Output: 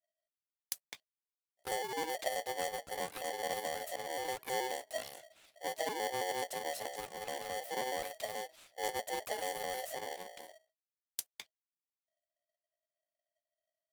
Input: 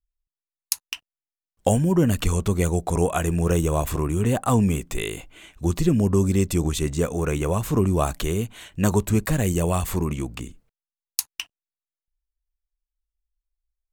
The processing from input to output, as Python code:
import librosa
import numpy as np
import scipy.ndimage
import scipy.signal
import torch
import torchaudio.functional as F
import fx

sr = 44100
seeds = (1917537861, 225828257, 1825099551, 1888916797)

y = fx.pitch_trill(x, sr, semitones=5.0, every_ms=107)
y = fx.tone_stack(y, sr, knobs='6-0-2')
y = y * np.sign(np.sin(2.0 * np.pi * 640.0 * np.arange(len(y)) / sr))